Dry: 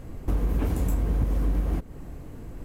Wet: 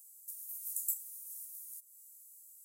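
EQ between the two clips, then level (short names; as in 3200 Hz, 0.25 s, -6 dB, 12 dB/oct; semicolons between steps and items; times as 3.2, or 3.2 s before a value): inverse Chebyshev high-pass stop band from 1600 Hz, stop band 80 dB; +12.0 dB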